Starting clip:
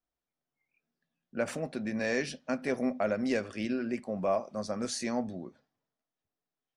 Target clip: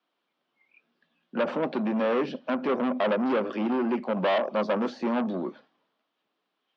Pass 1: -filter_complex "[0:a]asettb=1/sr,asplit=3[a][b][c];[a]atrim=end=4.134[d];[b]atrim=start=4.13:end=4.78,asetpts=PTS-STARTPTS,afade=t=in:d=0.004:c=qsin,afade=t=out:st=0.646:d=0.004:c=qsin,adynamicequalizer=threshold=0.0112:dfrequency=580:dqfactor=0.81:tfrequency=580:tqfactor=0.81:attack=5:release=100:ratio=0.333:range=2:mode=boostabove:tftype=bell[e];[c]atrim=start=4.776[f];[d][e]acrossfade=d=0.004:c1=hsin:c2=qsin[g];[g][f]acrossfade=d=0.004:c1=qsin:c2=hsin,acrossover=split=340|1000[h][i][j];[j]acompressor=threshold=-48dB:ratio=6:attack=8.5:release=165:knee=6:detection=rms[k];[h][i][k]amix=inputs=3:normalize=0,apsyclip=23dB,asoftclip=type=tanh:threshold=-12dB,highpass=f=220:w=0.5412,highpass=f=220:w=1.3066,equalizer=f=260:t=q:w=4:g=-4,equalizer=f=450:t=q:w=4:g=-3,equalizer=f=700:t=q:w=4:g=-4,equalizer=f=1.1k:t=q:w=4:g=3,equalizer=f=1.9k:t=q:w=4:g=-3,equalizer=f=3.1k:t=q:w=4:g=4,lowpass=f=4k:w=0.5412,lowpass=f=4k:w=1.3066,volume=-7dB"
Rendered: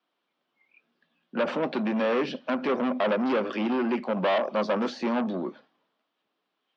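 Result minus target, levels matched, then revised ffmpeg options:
compressor: peak gain reduction -6.5 dB
-filter_complex "[0:a]asettb=1/sr,asplit=3[a][b][c];[a]atrim=end=4.134[d];[b]atrim=start=4.13:end=4.78,asetpts=PTS-STARTPTS,afade=t=in:d=0.004:c=qsin,afade=t=out:st=0.646:d=0.004:c=qsin,adynamicequalizer=threshold=0.0112:dfrequency=580:dqfactor=0.81:tfrequency=580:tqfactor=0.81:attack=5:release=100:ratio=0.333:range=2:mode=boostabove:tftype=bell[e];[c]atrim=start=4.776[f];[d][e]acrossfade=d=0.004:c1=hsin:c2=qsin[g];[g][f]acrossfade=d=0.004:c1=qsin:c2=hsin,acrossover=split=340|1000[h][i][j];[j]acompressor=threshold=-56dB:ratio=6:attack=8.5:release=165:knee=6:detection=rms[k];[h][i][k]amix=inputs=3:normalize=0,apsyclip=23dB,asoftclip=type=tanh:threshold=-12dB,highpass=f=220:w=0.5412,highpass=f=220:w=1.3066,equalizer=f=260:t=q:w=4:g=-4,equalizer=f=450:t=q:w=4:g=-3,equalizer=f=700:t=q:w=4:g=-4,equalizer=f=1.1k:t=q:w=4:g=3,equalizer=f=1.9k:t=q:w=4:g=-3,equalizer=f=3.1k:t=q:w=4:g=4,lowpass=f=4k:w=0.5412,lowpass=f=4k:w=1.3066,volume=-7dB"

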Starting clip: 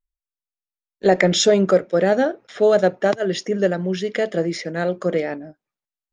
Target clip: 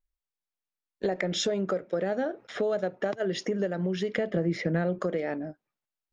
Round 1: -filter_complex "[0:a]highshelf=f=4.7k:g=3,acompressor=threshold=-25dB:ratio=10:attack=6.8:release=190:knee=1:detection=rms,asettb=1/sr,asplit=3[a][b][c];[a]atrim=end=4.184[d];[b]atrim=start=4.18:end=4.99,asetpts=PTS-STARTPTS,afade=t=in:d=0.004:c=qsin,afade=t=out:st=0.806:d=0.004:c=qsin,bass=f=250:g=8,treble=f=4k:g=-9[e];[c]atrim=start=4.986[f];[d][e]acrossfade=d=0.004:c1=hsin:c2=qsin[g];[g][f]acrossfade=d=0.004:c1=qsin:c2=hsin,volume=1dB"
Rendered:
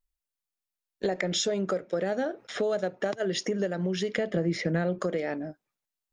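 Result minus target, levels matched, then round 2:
8000 Hz band +4.0 dB
-filter_complex "[0:a]highshelf=f=4.7k:g=-8.5,acompressor=threshold=-25dB:ratio=10:attack=6.8:release=190:knee=1:detection=rms,asettb=1/sr,asplit=3[a][b][c];[a]atrim=end=4.184[d];[b]atrim=start=4.18:end=4.99,asetpts=PTS-STARTPTS,afade=t=in:d=0.004:c=qsin,afade=t=out:st=0.806:d=0.004:c=qsin,bass=f=250:g=8,treble=f=4k:g=-9[e];[c]atrim=start=4.986[f];[d][e]acrossfade=d=0.004:c1=hsin:c2=qsin[g];[g][f]acrossfade=d=0.004:c1=qsin:c2=hsin,volume=1dB"

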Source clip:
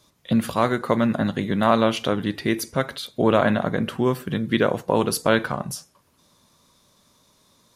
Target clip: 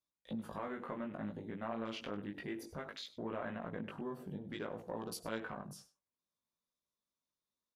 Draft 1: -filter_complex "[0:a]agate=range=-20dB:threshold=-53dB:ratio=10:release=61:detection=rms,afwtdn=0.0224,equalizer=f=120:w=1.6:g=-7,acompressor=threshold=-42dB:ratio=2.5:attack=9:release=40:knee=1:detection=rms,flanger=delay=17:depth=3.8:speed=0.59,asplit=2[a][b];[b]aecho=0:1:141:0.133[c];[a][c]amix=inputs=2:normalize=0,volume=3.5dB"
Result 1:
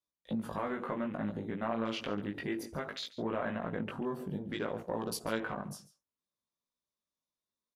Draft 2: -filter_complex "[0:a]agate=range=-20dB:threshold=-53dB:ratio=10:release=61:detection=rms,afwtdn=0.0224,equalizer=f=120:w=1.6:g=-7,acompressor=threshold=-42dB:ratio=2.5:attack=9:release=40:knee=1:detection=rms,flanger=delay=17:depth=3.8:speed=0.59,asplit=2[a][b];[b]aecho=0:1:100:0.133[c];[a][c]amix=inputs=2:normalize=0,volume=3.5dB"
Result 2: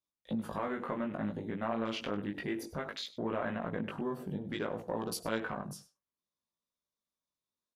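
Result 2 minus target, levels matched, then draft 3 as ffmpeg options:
compressor: peak gain reduction -6.5 dB
-filter_complex "[0:a]agate=range=-20dB:threshold=-53dB:ratio=10:release=61:detection=rms,afwtdn=0.0224,equalizer=f=120:w=1.6:g=-7,acompressor=threshold=-52.5dB:ratio=2.5:attack=9:release=40:knee=1:detection=rms,flanger=delay=17:depth=3.8:speed=0.59,asplit=2[a][b];[b]aecho=0:1:100:0.133[c];[a][c]amix=inputs=2:normalize=0,volume=3.5dB"

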